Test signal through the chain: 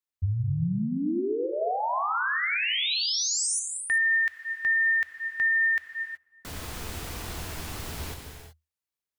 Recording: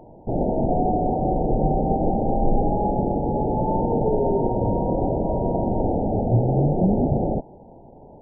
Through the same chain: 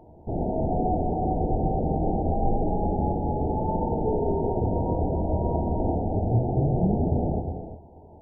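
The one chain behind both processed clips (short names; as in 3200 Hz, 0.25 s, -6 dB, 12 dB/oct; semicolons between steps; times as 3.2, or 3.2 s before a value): bell 79 Hz +11 dB 0.33 oct; notch 550 Hz, Q 12; non-linear reverb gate 0.4 s flat, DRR 3.5 dB; gain -5.5 dB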